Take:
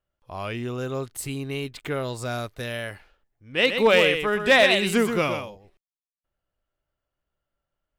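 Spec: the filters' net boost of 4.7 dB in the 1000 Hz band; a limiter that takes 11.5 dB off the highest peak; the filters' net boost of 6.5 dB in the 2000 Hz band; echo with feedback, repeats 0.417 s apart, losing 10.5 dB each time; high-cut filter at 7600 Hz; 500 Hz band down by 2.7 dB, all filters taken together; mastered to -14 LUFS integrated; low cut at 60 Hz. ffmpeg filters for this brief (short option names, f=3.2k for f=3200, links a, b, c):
-af "highpass=60,lowpass=7.6k,equalizer=f=500:t=o:g=-5,equalizer=f=1k:t=o:g=6,equalizer=f=2k:t=o:g=6.5,alimiter=limit=-13dB:level=0:latency=1,aecho=1:1:417|834|1251:0.299|0.0896|0.0269,volume=11dB"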